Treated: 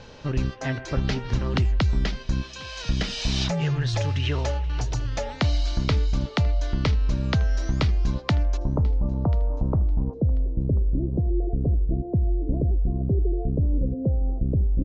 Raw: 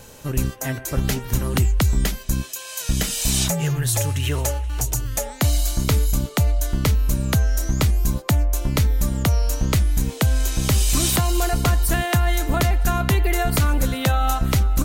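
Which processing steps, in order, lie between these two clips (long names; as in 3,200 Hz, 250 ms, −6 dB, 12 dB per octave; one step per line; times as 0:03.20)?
Butterworth low-pass 5,200 Hz 36 dB per octave, from 0:08.56 1,000 Hz, from 0:10.13 520 Hz
downward compressor 1.5 to 1, threshold −24 dBFS, peak gain reduction 4 dB
repeating echo 1,039 ms, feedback 18%, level −22 dB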